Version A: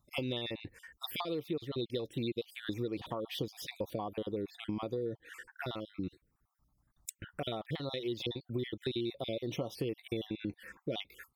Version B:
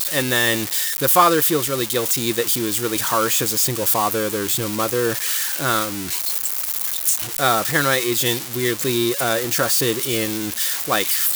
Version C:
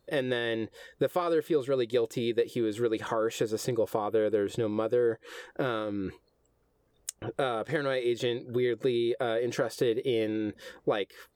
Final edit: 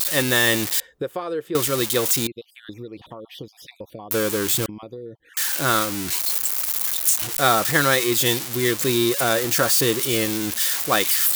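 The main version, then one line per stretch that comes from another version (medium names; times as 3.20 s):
B
0.80–1.55 s: from C
2.27–4.11 s: from A
4.66–5.37 s: from A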